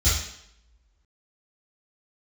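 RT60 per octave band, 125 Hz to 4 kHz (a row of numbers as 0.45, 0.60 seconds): 0.50, 0.80, 0.80, 0.75, 0.75, 0.70 seconds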